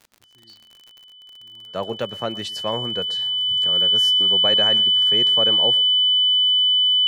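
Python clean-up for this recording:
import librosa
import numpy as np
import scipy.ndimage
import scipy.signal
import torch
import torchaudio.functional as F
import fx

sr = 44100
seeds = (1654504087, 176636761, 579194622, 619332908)

y = fx.fix_declick_ar(x, sr, threshold=6.5)
y = fx.notch(y, sr, hz=3000.0, q=30.0)
y = fx.fix_echo_inverse(y, sr, delay_ms=119, level_db=-21.5)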